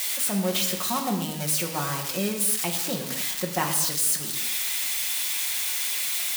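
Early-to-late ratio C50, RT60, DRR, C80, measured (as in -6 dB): 7.0 dB, not exponential, 1.0 dB, 8.0 dB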